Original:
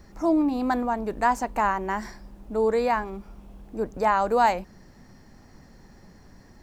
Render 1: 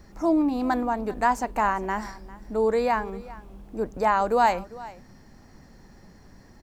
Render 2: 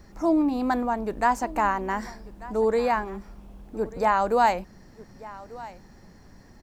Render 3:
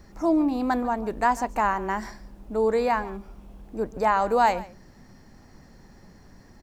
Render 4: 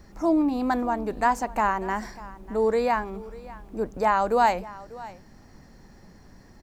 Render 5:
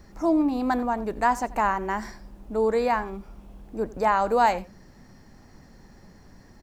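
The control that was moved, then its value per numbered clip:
delay, time: 399 ms, 1191 ms, 142 ms, 594 ms, 87 ms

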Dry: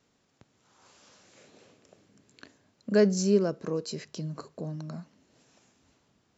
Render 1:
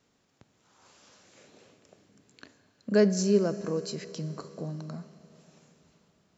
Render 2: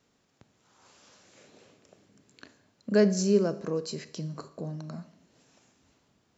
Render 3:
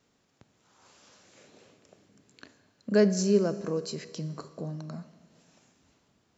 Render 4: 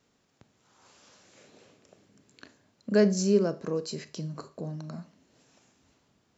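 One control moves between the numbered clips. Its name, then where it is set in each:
Schroeder reverb, RT60: 4 s, 0.75 s, 1.8 s, 0.35 s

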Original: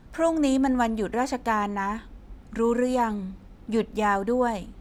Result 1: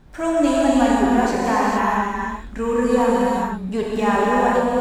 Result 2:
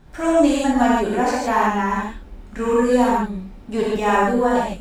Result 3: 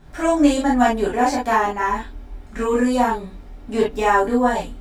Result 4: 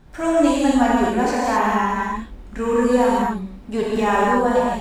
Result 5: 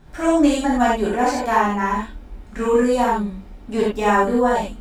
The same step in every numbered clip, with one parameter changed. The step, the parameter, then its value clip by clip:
gated-style reverb, gate: 500 ms, 190 ms, 80 ms, 290 ms, 120 ms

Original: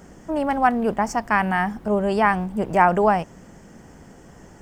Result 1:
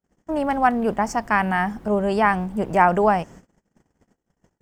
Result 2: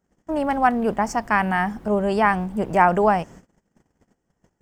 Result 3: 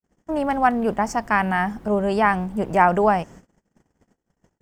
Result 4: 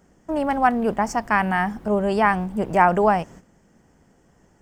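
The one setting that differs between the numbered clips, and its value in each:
gate, range: -42 dB, -29 dB, -58 dB, -12 dB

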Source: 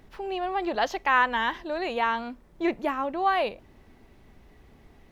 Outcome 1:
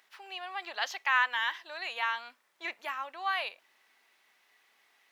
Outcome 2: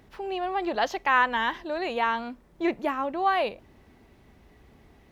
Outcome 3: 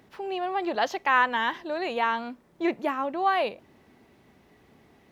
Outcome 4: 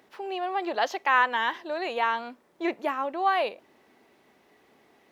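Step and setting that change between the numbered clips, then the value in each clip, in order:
high-pass, cutoff frequency: 1.5 kHz, 40 Hz, 130 Hz, 340 Hz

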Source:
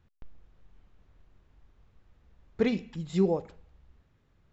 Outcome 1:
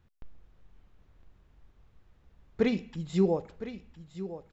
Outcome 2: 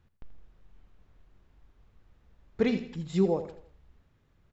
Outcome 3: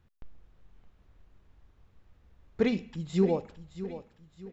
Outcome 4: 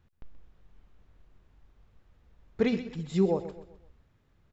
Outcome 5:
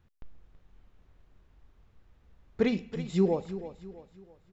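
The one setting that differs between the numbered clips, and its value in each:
feedback delay, time: 1010 ms, 82 ms, 617 ms, 128 ms, 328 ms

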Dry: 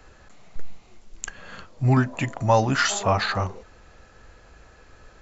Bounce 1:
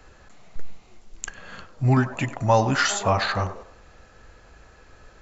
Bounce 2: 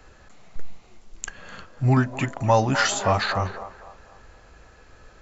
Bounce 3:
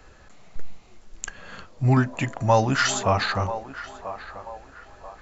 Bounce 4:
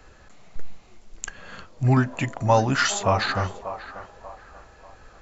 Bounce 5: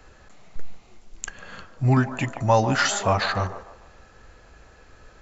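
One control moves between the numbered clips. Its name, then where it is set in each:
band-passed feedback delay, time: 98 ms, 249 ms, 986 ms, 588 ms, 147 ms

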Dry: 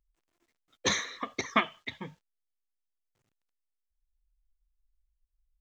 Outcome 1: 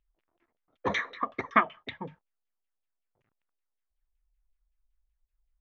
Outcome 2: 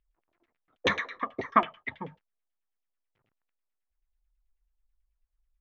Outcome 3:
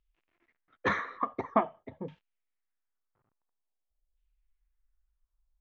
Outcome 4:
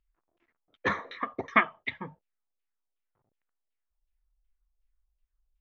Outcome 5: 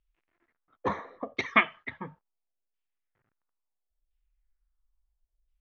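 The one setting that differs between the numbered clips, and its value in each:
LFO low-pass, rate: 5.3 Hz, 9.2 Hz, 0.48 Hz, 2.7 Hz, 0.73 Hz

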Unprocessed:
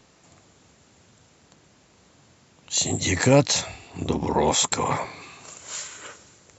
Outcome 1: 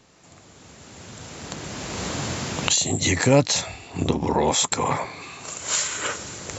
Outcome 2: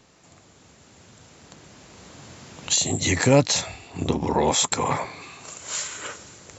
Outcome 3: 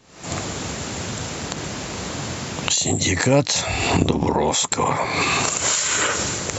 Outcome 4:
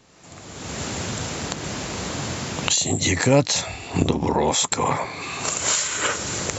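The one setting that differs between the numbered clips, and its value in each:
recorder AGC, rising by: 14 dB/s, 5.3 dB/s, 87 dB/s, 35 dB/s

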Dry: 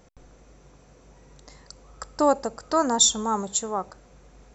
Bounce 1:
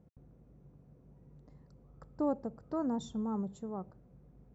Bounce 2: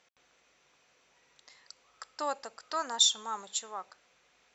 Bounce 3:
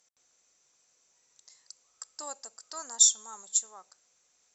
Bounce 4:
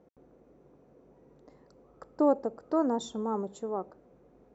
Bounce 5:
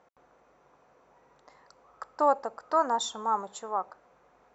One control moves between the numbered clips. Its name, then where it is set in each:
band-pass filter, frequency: 140 Hz, 2.9 kHz, 7.8 kHz, 350 Hz, 1 kHz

